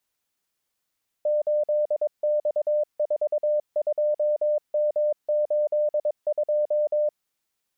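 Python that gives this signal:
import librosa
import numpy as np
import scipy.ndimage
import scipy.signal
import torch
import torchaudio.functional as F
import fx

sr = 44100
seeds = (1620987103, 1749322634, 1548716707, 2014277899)

y = fx.morse(sr, text='8X42M82', wpm=22, hz=599.0, level_db=-19.5)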